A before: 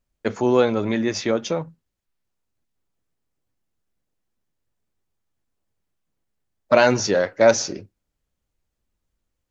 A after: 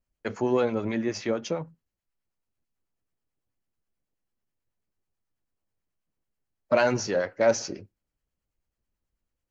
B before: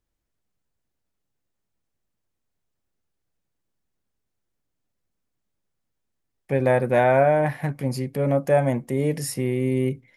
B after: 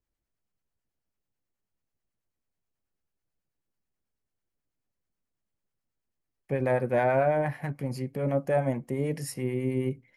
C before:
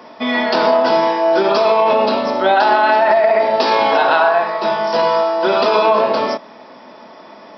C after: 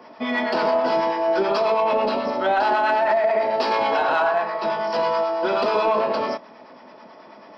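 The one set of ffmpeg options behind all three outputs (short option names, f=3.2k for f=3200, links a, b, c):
-filter_complex "[0:a]bass=f=250:g=0,treble=f=4k:g=-3,bandreject=f=3.6k:w=10,asplit=2[a][b];[b]asoftclip=type=tanh:threshold=-13dB,volume=-7dB[c];[a][c]amix=inputs=2:normalize=0,acrossover=split=770[d][e];[d]aeval=exprs='val(0)*(1-0.5/2+0.5/2*cos(2*PI*9.2*n/s))':c=same[f];[e]aeval=exprs='val(0)*(1-0.5/2-0.5/2*cos(2*PI*9.2*n/s))':c=same[g];[f][g]amix=inputs=2:normalize=0,volume=-6.5dB"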